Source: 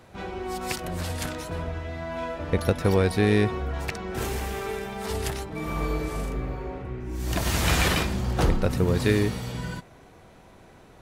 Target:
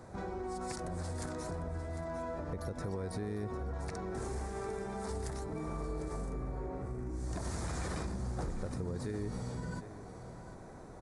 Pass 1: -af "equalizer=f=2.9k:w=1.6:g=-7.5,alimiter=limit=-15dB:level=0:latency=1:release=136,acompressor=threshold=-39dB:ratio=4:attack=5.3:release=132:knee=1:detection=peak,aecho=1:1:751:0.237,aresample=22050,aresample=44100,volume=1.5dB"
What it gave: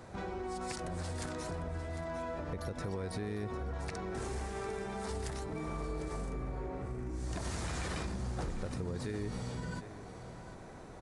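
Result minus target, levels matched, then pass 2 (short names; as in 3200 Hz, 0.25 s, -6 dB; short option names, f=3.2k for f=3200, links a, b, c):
4000 Hz band +4.0 dB
-af "equalizer=f=2.9k:w=1.6:g=-18.5,alimiter=limit=-15dB:level=0:latency=1:release=136,acompressor=threshold=-39dB:ratio=4:attack=5.3:release=132:knee=1:detection=peak,aecho=1:1:751:0.237,aresample=22050,aresample=44100,volume=1.5dB"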